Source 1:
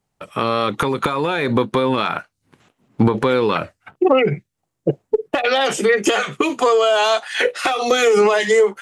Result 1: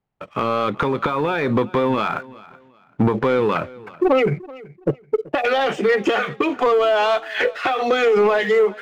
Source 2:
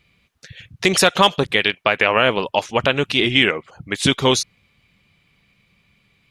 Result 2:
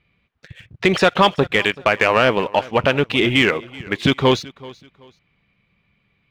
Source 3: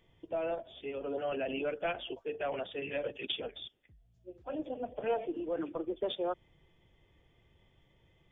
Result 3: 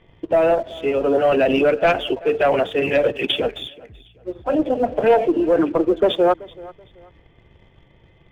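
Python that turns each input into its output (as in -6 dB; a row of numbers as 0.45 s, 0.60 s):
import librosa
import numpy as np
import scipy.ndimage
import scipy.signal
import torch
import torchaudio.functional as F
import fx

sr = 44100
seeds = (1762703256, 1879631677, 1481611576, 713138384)

y = scipy.signal.sosfilt(scipy.signal.butter(2, 2700.0, 'lowpass', fs=sr, output='sos'), x)
y = fx.leveller(y, sr, passes=1)
y = fx.echo_feedback(y, sr, ms=381, feedback_pct=28, wet_db=-21)
y = y * 10.0 ** (-20 / 20.0) / np.sqrt(np.mean(np.square(y)))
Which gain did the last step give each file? -3.5 dB, -1.0 dB, +15.5 dB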